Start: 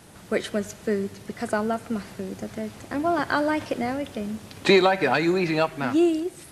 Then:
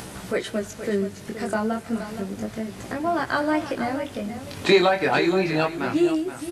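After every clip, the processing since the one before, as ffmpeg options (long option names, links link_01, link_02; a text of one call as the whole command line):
ffmpeg -i in.wav -af "acompressor=mode=upward:threshold=-27dB:ratio=2.5,flanger=delay=15.5:depth=7.3:speed=0.31,aecho=1:1:473:0.282,volume=3dB" out.wav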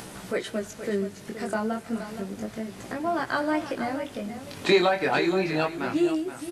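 ffmpeg -i in.wav -af "equalizer=frequency=78:width_type=o:width=0.89:gain=-7.5,volume=-3dB" out.wav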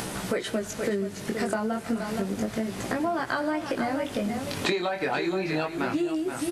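ffmpeg -i in.wav -af "acompressor=threshold=-31dB:ratio=16,volume=7.5dB" out.wav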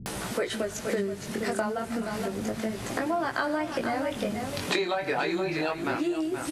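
ffmpeg -i in.wav -filter_complex "[0:a]acrossover=split=220[link_01][link_02];[link_02]adelay=60[link_03];[link_01][link_03]amix=inputs=2:normalize=0" out.wav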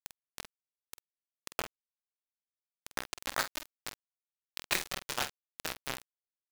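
ffmpeg -i in.wav -filter_complex "[0:a]highpass=frequency=880:poles=1,acrusher=bits=3:mix=0:aa=0.000001,asplit=2[link_01][link_02];[link_02]adelay=47,volume=-10.5dB[link_03];[link_01][link_03]amix=inputs=2:normalize=0,volume=-1.5dB" out.wav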